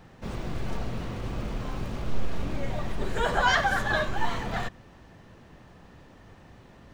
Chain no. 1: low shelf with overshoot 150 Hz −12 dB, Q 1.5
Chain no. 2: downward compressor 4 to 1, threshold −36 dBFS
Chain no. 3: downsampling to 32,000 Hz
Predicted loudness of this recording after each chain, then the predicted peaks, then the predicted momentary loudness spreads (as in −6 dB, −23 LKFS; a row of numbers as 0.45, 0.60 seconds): −30.0, −41.0, −30.0 LKFS; −10.5, −24.5, −10.0 dBFS; 14, 15, 12 LU